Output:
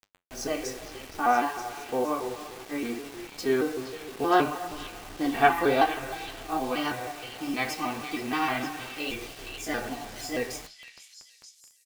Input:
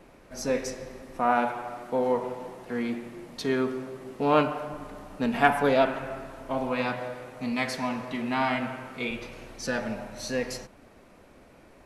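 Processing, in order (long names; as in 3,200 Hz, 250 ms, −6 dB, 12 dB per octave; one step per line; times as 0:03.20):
pitch shifter gated in a rhythm +3 semitones, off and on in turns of 157 ms
comb filter 2.6 ms, depth 54%
bit reduction 7 bits
flanger 0.62 Hz, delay 9.1 ms, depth 8.4 ms, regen −60%
on a send: echo through a band-pass that steps 466 ms, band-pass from 3,300 Hz, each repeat 0.7 octaves, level −6 dB
on the sum: level +3 dB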